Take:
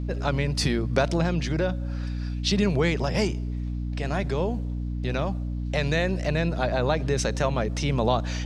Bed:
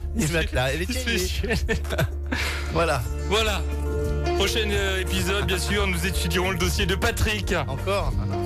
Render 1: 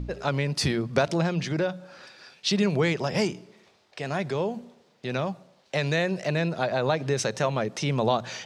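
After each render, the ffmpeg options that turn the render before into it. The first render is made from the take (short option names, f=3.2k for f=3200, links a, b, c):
-af "bandreject=f=60:t=h:w=4,bandreject=f=120:t=h:w=4,bandreject=f=180:t=h:w=4,bandreject=f=240:t=h:w=4,bandreject=f=300:t=h:w=4"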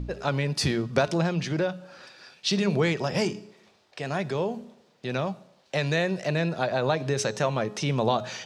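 -af "bandreject=f=2.1k:w=29,bandreject=f=210.3:t=h:w=4,bandreject=f=420.6:t=h:w=4,bandreject=f=630.9:t=h:w=4,bandreject=f=841.2:t=h:w=4,bandreject=f=1.0515k:t=h:w=4,bandreject=f=1.2618k:t=h:w=4,bandreject=f=1.4721k:t=h:w=4,bandreject=f=1.6824k:t=h:w=4,bandreject=f=1.8927k:t=h:w=4,bandreject=f=2.103k:t=h:w=4,bandreject=f=2.3133k:t=h:w=4,bandreject=f=2.5236k:t=h:w=4,bandreject=f=2.7339k:t=h:w=4,bandreject=f=2.9442k:t=h:w=4,bandreject=f=3.1545k:t=h:w=4,bandreject=f=3.3648k:t=h:w=4,bandreject=f=3.5751k:t=h:w=4,bandreject=f=3.7854k:t=h:w=4,bandreject=f=3.9957k:t=h:w=4,bandreject=f=4.206k:t=h:w=4,bandreject=f=4.4163k:t=h:w=4,bandreject=f=4.6266k:t=h:w=4,bandreject=f=4.8369k:t=h:w=4,bandreject=f=5.0472k:t=h:w=4,bandreject=f=5.2575k:t=h:w=4,bandreject=f=5.4678k:t=h:w=4,bandreject=f=5.6781k:t=h:w=4,bandreject=f=5.8884k:t=h:w=4,bandreject=f=6.0987k:t=h:w=4,bandreject=f=6.309k:t=h:w=4,bandreject=f=6.5193k:t=h:w=4,bandreject=f=6.7296k:t=h:w=4,bandreject=f=6.9399k:t=h:w=4,bandreject=f=7.1502k:t=h:w=4,bandreject=f=7.3605k:t=h:w=4,bandreject=f=7.5708k:t=h:w=4,bandreject=f=7.7811k:t=h:w=4"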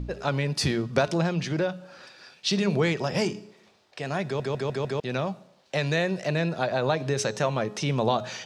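-filter_complex "[0:a]asplit=6[a][b][c][d][e][f];[a]atrim=end=4.402[g];[b]atrim=start=4.248:end=4.402[h];[c]atrim=start=4.248:end=4.402[i];[d]atrim=start=4.248:end=4.402[j];[e]atrim=start=4.248:end=4.402[k];[f]atrim=start=4.998[l];[g][h]acrossfade=d=0.004:c1=hsin:c2=hsin[m];[m][i]acrossfade=d=0.004:c1=hsin:c2=hsin[n];[n][j]acrossfade=d=0.004:c1=hsin:c2=hsin[o];[o][k]acrossfade=d=0.004:c1=hsin:c2=hsin[p];[p][l]acrossfade=d=0.004:c1=hsin:c2=hsin"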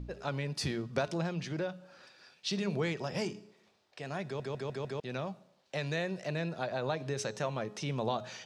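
-af "volume=-9dB"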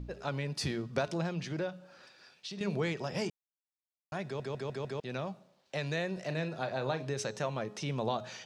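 -filter_complex "[0:a]asettb=1/sr,asplit=3[a][b][c];[a]atrim=end=1.694[d];[b]atrim=start=1.69:end=2.61,asetpts=PTS-STARTPTS,afade=t=in:d=0.004:c=qsin,afade=t=out:st=0.916:d=0.004:c=qsin,acompressor=threshold=-39dB:ratio=6:attack=3.2:release=140:knee=1:detection=peak[e];[c]atrim=start=2.606[f];[d][e]acrossfade=d=0.004:c1=hsin:c2=qsin[g];[g][f]acrossfade=d=0.004:c1=qsin:c2=hsin,asettb=1/sr,asplit=3[h][i][j];[h]atrim=end=6.134[k];[i]atrim=start=6.13:end=7.05,asetpts=PTS-STARTPTS,afade=t=in:d=0.004:c=qsin,afade=t=out:st=0.916:d=0.004:c=qsin,asplit=2[l][m];[m]adelay=38,volume=-10dB[n];[l][n]amix=inputs=2:normalize=0,atrim=end_sample=40572[o];[j]atrim=start=7.046[p];[k][o]acrossfade=d=0.004:c1=hsin:c2=qsin[q];[q][p]acrossfade=d=0.004:c1=qsin:c2=hsin,asplit=3[r][s][t];[r]atrim=end=3.3,asetpts=PTS-STARTPTS,afade=t=out:st=3.296:d=0.004:c=hsin[u];[s]atrim=start=3.3:end=4.12,asetpts=PTS-STARTPTS,volume=0[v];[t]atrim=start=4.12,asetpts=PTS-STARTPTS,afade=t=in:d=0.004:c=hsin[w];[u][v][w]concat=n=3:v=0:a=1"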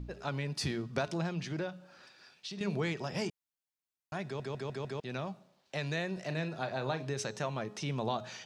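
-af "equalizer=f=520:t=o:w=0.4:g=-4"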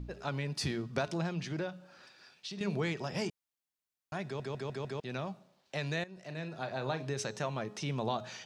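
-filter_complex "[0:a]asplit=2[a][b];[a]atrim=end=6.04,asetpts=PTS-STARTPTS,afade=t=out:st=6.036:d=0.004:c=hsin:silence=0.149624[c];[b]atrim=start=6.04,asetpts=PTS-STARTPTS,afade=t=in:d=1.13:c=qsin:silence=0.149624[d];[c][d]concat=n=2:v=0:a=1"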